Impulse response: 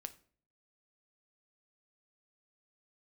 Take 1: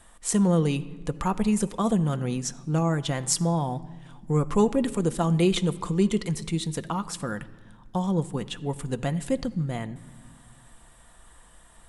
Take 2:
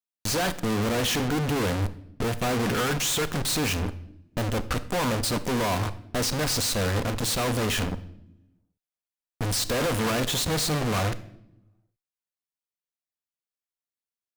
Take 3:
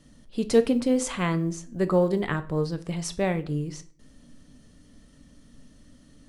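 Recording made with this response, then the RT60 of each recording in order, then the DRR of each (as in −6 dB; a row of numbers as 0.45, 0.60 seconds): 3; non-exponential decay, non-exponential decay, 0.50 s; 8.5, 12.0, 9.5 decibels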